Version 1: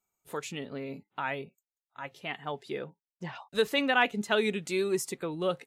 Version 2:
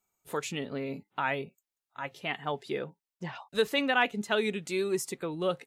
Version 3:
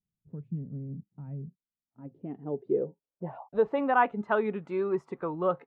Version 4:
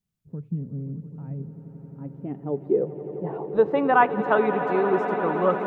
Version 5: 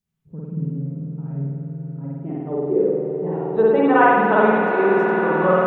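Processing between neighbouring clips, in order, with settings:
vocal rider within 3 dB 2 s
low-pass sweep 160 Hz -> 1100 Hz, 1.42–4.03
swelling echo 87 ms, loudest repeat 8, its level -15 dB; gain +5.5 dB
spring tank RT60 1.5 s, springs 50 ms, chirp 55 ms, DRR -6 dB; gain -1 dB

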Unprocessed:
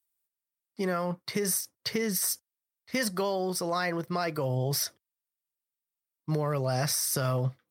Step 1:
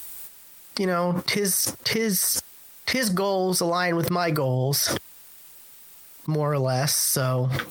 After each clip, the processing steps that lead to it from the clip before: fast leveller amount 100%; gain +2.5 dB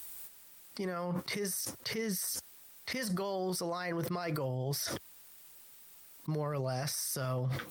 limiter -19 dBFS, peak gain reduction 9.5 dB; gain -8 dB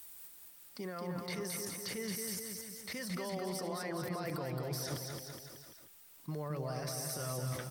bouncing-ball echo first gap 0.22 s, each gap 0.9×, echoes 5; gain -5.5 dB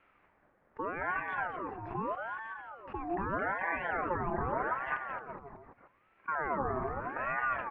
LPF 1200 Hz 24 dB/oct; ring modulator with a swept carrier 930 Hz, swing 45%, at 0.81 Hz; gain +8.5 dB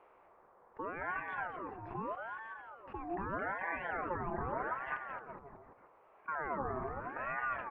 band noise 380–1200 Hz -60 dBFS; gain -4.5 dB

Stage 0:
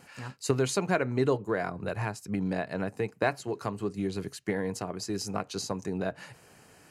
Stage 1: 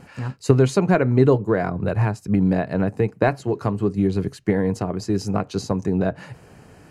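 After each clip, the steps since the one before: tilt -2.5 dB/oct; gain +6.5 dB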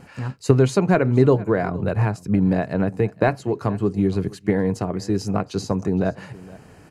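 echo 0.467 s -21 dB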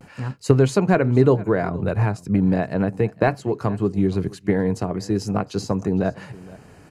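vibrato 0.4 Hz 28 cents

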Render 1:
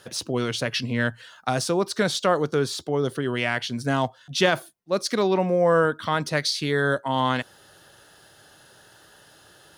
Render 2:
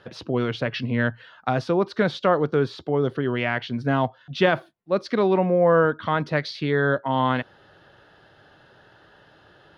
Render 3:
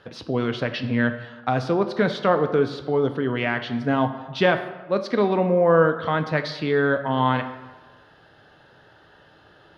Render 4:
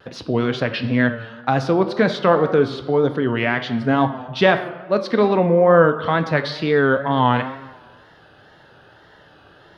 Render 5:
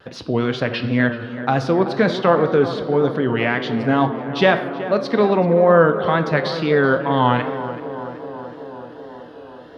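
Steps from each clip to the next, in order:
air absorption 320 m; gain +2.5 dB
reverb RT60 1.3 s, pre-delay 3 ms, DRR 8 dB
wow and flutter 84 cents; gain +4 dB
tape echo 0.379 s, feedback 85%, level -11 dB, low-pass 1500 Hz

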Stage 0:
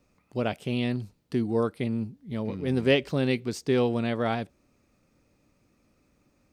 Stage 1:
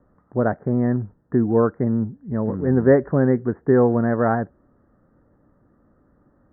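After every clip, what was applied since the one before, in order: steep low-pass 1800 Hz 96 dB/oct; gain +8 dB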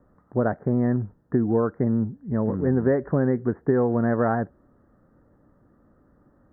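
compressor, threshold -17 dBFS, peak gain reduction 8 dB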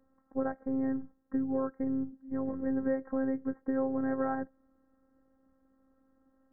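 robotiser 266 Hz; gain -7.5 dB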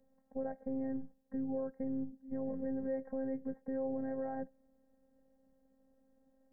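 limiter -26.5 dBFS, peak gain reduction 8 dB; fixed phaser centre 330 Hz, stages 6; gain +1 dB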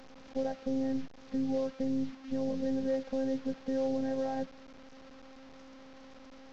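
delta modulation 32 kbps, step -51 dBFS; gain +5.5 dB

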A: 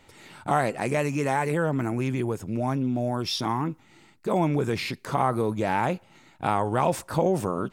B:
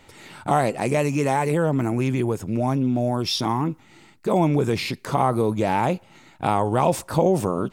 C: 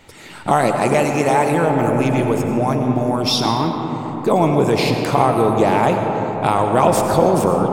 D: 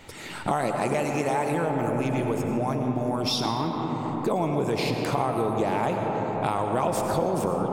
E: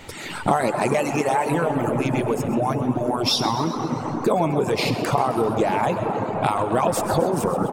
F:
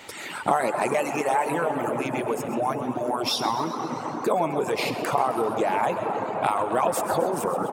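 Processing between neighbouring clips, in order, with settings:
dynamic EQ 1600 Hz, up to -6 dB, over -41 dBFS, Q 1.6; gain +4.5 dB
harmonic-percussive split harmonic -6 dB; on a send at -3 dB: reverb RT60 4.9 s, pre-delay 55 ms; on the sum: gain +7 dB
compressor 2.5:1, threshold -27 dBFS, peak gain reduction 12 dB
reverb removal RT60 1.5 s; on a send: frequency-shifting echo 0.13 s, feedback 63%, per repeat +97 Hz, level -13 dB; on the sum: gain +6.5 dB
HPF 500 Hz 6 dB/oct; dynamic EQ 4700 Hz, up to -6 dB, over -42 dBFS, Q 0.93

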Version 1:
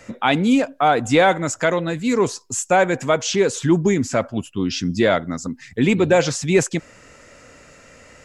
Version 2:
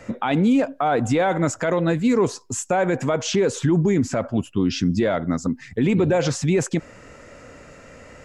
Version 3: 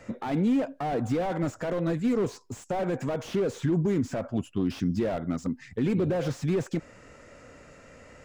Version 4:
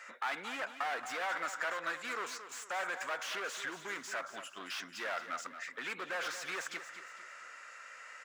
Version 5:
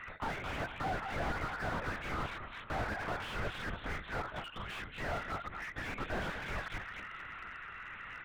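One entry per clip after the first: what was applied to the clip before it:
high shelf 2000 Hz -9 dB; limiter -16 dBFS, peak gain reduction 10.5 dB; gain +4.5 dB
slew limiter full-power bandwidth 65 Hz; gain -6.5 dB
resonant high-pass 1400 Hz, resonance Q 1.9; feedback echo 0.226 s, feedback 40%, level -11 dB; gain +1 dB
LPC vocoder at 8 kHz whisper; slew limiter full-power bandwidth 11 Hz; gain +4.5 dB

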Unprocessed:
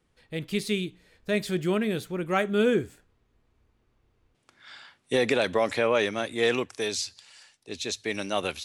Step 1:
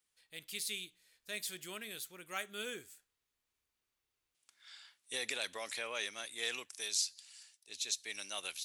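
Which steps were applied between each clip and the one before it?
pre-emphasis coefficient 0.97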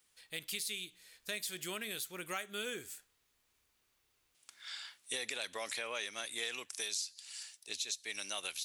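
compressor 4:1, threshold -48 dBFS, peak gain reduction 15.5 dB; gain +10 dB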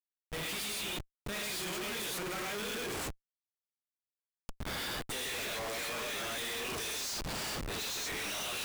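non-linear reverb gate 0.15 s rising, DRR -4 dB; Schmitt trigger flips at -42.5 dBFS

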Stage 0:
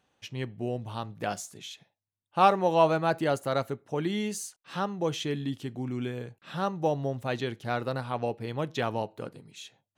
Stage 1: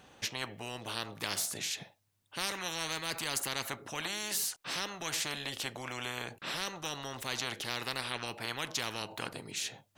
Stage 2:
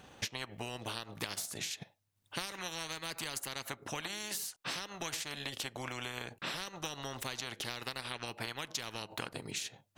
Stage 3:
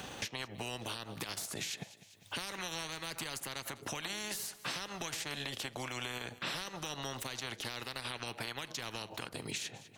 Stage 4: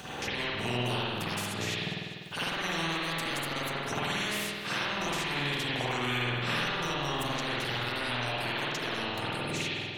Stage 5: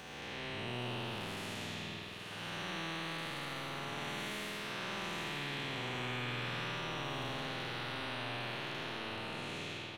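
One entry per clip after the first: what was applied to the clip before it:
spectral compressor 10:1; gain -6 dB
low shelf 180 Hz +3.5 dB; compressor, threshold -38 dBFS, peak gain reduction 9.5 dB; transient shaper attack +3 dB, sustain -8 dB; gain +1.5 dB
limiter -29 dBFS, peak gain reduction 10.5 dB; feedback echo 0.199 s, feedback 38%, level -20 dB; three-band squash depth 70%; gain +1.5 dB
spring tank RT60 2 s, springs 49 ms, chirp 40 ms, DRR -10 dB
time blur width 0.382 s; echo 0.822 s -8.5 dB; gain -7 dB

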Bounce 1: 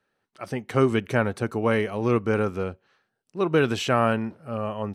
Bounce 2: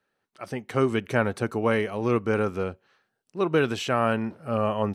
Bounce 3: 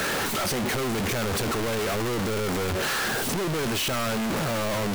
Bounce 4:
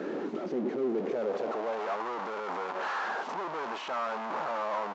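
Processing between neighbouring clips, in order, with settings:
low shelf 180 Hz -3 dB; vocal rider within 5 dB 0.5 s
infinite clipping
band-pass sweep 330 Hz -> 940 Hz, 0.79–1.96; HPF 170 Hz 24 dB/oct; downsampling 16000 Hz; gain +2.5 dB

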